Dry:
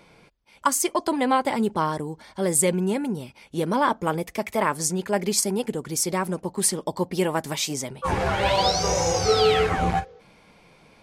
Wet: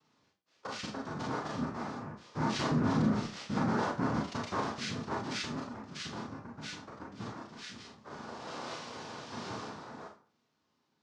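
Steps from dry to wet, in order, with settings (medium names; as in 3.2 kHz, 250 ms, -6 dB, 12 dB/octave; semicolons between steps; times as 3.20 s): Doppler pass-by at 3.44 s, 5 m/s, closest 1.3 m; dynamic bell 1.3 kHz, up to -6 dB, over -51 dBFS, Q 1.7; peak limiter -27.5 dBFS, peak gain reduction 11.5 dB; noise-vocoded speech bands 3; formant shift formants -6 st; Schroeder reverb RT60 0.33 s, combs from 26 ms, DRR -2 dB; trim +1.5 dB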